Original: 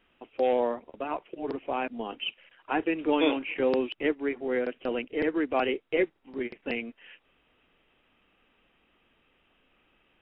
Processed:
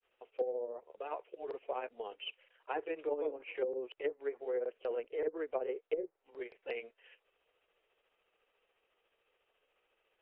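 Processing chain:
granular cloud 128 ms, grains 14 per second, spray 11 ms, pitch spread up and down by 0 semitones
low shelf with overshoot 340 Hz −10 dB, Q 3
treble cut that deepens with the level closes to 350 Hz, closed at −19 dBFS
level −9 dB

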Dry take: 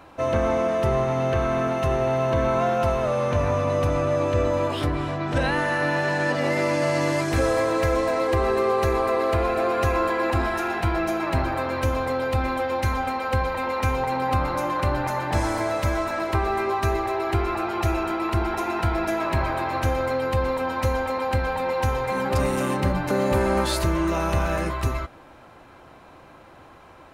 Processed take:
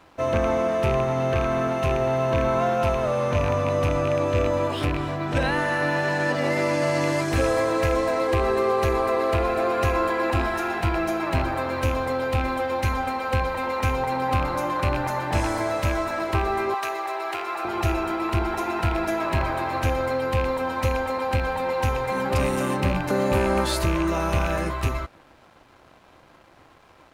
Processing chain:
loose part that buzzes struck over −22 dBFS, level −20 dBFS
0:16.74–0:17.65: high-pass filter 610 Hz 12 dB per octave
dead-zone distortion −51.5 dBFS

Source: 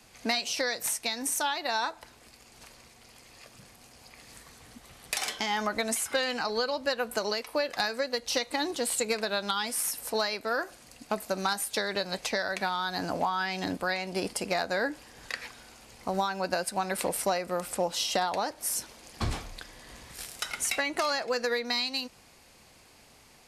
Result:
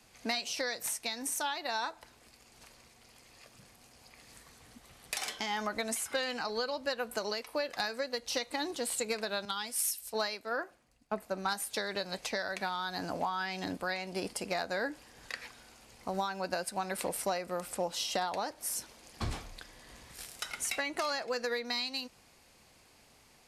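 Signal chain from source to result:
0:09.45–0:11.60: multiband upward and downward expander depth 100%
level −5 dB

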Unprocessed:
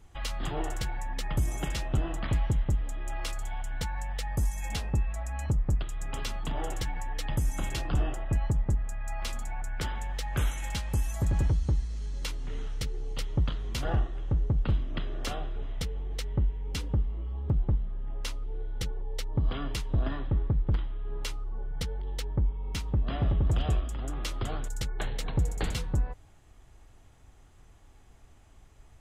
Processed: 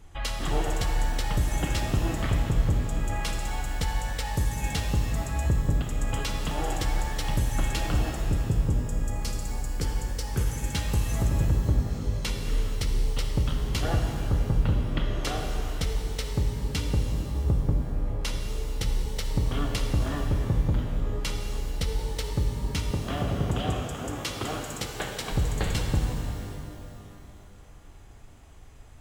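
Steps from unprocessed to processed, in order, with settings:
0:08.11–0:10.75: gain on a spectral selection 550–4,200 Hz −8 dB
0:22.91–0:25.31: Bessel high-pass filter 150 Hz, order 2
downward compressor, threshold −26 dBFS, peak gain reduction 5 dB
reverb with rising layers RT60 2.5 s, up +12 semitones, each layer −8 dB, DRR 3 dB
level +4 dB

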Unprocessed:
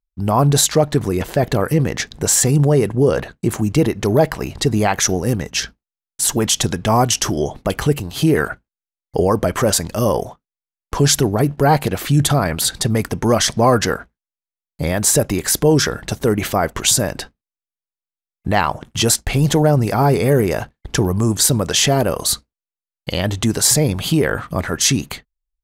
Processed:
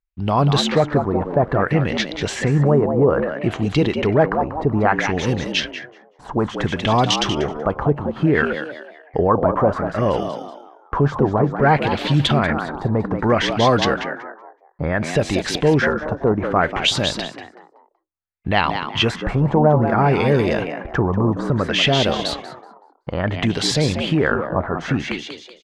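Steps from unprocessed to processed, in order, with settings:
echo with shifted repeats 189 ms, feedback 35%, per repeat +78 Hz, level −8 dB
auto-filter low-pass sine 0.6 Hz 960–3,700 Hz
level −2.5 dB

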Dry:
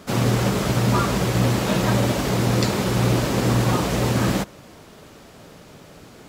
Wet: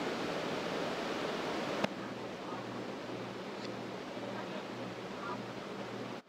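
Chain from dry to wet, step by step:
played backwards from end to start
gate with flip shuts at −24 dBFS, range −28 dB
three-way crossover with the lows and the highs turned down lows −21 dB, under 200 Hz, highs −19 dB, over 5,100 Hz
level +10 dB

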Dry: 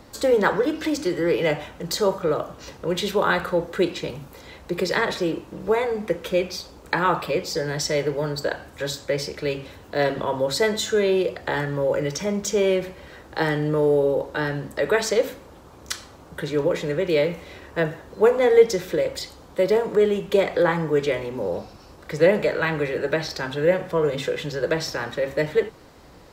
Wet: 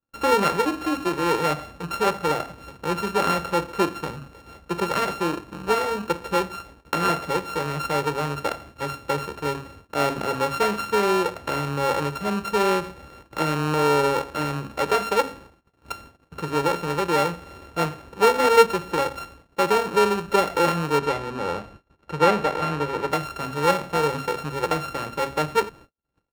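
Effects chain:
samples sorted by size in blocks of 32 samples
0:20.97–0:23.10: high-shelf EQ 9,600 Hz → 5,100 Hz −11 dB
noise gate −43 dBFS, range −47 dB
high-shelf EQ 4,000 Hz −11 dB

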